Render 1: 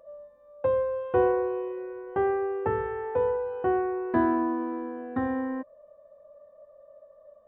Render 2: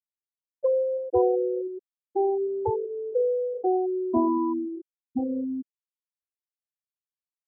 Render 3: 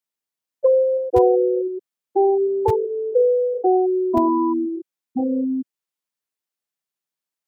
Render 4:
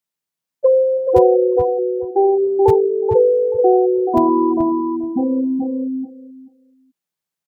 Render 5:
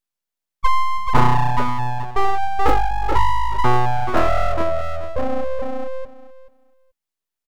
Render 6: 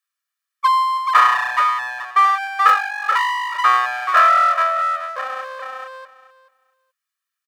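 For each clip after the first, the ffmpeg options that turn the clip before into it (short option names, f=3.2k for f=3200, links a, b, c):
-filter_complex "[0:a]afftfilt=real='re*gte(hypot(re,im),0.2)':imag='im*gte(hypot(re,im),0.2)':win_size=1024:overlap=0.75,asplit=2[a][b];[b]acompressor=threshold=-35dB:ratio=6,volume=-1dB[c];[a][c]amix=inputs=2:normalize=0"
-filter_complex "[0:a]lowshelf=f=60:g=11.5,acrossover=split=120|370[a][b][c];[a]acrusher=bits=5:mix=0:aa=0.000001[d];[b]alimiter=level_in=3.5dB:limit=-24dB:level=0:latency=1:release=12,volume=-3.5dB[e];[d][e][c]amix=inputs=3:normalize=0,volume=7.5dB"
-filter_complex "[0:a]equalizer=f=160:w=3.6:g=9.5,asplit=2[a][b];[b]adelay=431,lowpass=f=1.1k:p=1,volume=-3.5dB,asplit=2[c][d];[d]adelay=431,lowpass=f=1.1k:p=1,volume=0.16,asplit=2[e][f];[f]adelay=431,lowpass=f=1.1k:p=1,volume=0.16[g];[c][e][g]amix=inputs=3:normalize=0[h];[a][h]amix=inputs=2:normalize=0,volume=2.5dB"
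-af "aeval=exprs='abs(val(0))':c=same"
-af "highpass=f=1.4k:t=q:w=3.2,aecho=1:1:1.7:0.75,volume=1.5dB"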